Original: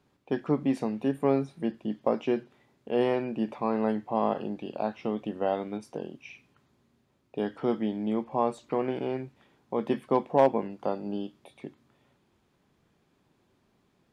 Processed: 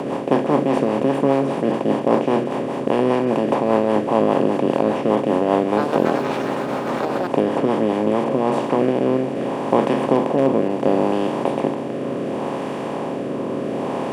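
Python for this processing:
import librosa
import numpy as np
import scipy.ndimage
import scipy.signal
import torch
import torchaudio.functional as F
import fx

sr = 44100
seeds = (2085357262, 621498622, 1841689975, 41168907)

y = fx.bin_compress(x, sr, power=0.2)
y = fx.rotary_switch(y, sr, hz=5.0, then_hz=0.7, switch_at_s=7.84)
y = fx.echo_pitch(y, sr, ms=280, semitones=7, count=3, db_per_echo=-6.0, at=(5.49, 7.74))
y = y * 10.0 ** (3.0 / 20.0)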